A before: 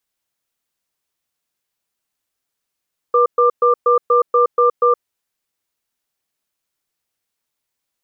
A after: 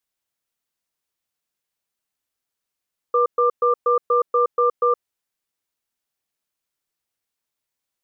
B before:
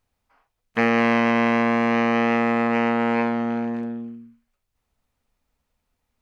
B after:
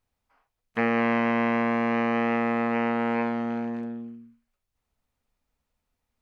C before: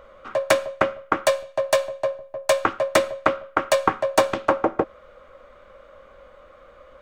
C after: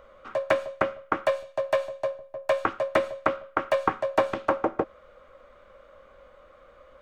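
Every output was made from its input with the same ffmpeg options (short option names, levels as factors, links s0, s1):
-filter_complex "[0:a]acrossover=split=3000[s0][s1];[s1]acompressor=threshold=0.00794:ratio=4:attack=1:release=60[s2];[s0][s2]amix=inputs=2:normalize=0,volume=0.596"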